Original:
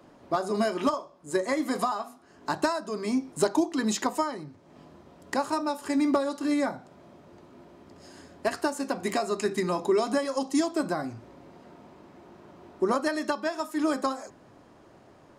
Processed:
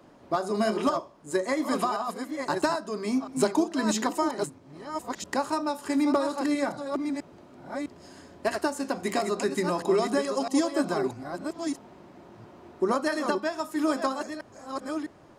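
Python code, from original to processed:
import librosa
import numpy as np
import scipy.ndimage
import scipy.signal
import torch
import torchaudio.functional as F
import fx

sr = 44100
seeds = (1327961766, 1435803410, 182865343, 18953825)

y = fx.reverse_delay(x, sr, ms=655, wet_db=-6)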